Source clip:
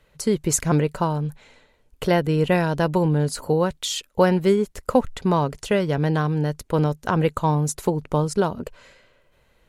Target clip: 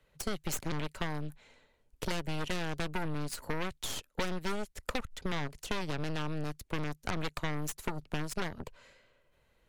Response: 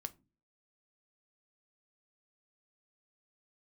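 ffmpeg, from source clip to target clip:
-filter_complex "[0:a]aeval=exprs='0.531*(cos(1*acos(clip(val(0)/0.531,-1,1)))-cos(1*PI/2))+0.133*(cos(8*acos(clip(val(0)/0.531,-1,1)))-cos(8*PI/2))':channel_layout=same,acrossover=split=110|1300[link_01][link_02][link_03];[link_01]acompressor=threshold=-27dB:ratio=4[link_04];[link_02]acompressor=threshold=-28dB:ratio=4[link_05];[link_03]acompressor=threshold=-27dB:ratio=4[link_06];[link_04][link_05][link_06]amix=inputs=3:normalize=0,volume=-9dB"

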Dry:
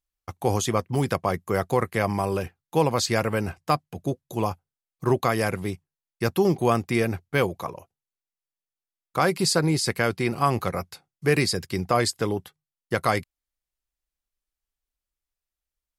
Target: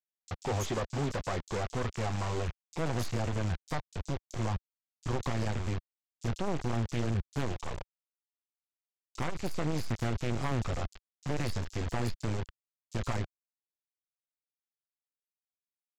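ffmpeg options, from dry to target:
ffmpeg -i in.wav -filter_complex "[0:a]aeval=exprs='if(lt(val(0),0),0.708*val(0),val(0))':channel_layout=same,tiltshelf=frequency=1100:gain=4,aresample=16000,acrusher=bits=5:mix=0:aa=0.000001,aresample=44100,asubboost=boost=7:cutoff=75,aeval=exprs='(tanh(20*val(0)+0.35)-tanh(0.35))/20':channel_layout=same,acrossover=split=4800[link_01][link_02];[link_01]adelay=30[link_03];[link_03][link_02]amix=inputs=2:normalize=0" out.wav

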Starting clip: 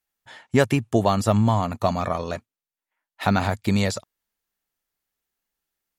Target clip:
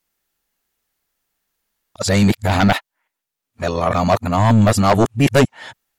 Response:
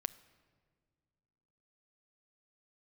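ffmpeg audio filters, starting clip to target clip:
-af "areverse,aeval=exprs='0.668*sin(PI/2*2.51*val(0)/0.668)':channel_layout=same,volume=-3dB"

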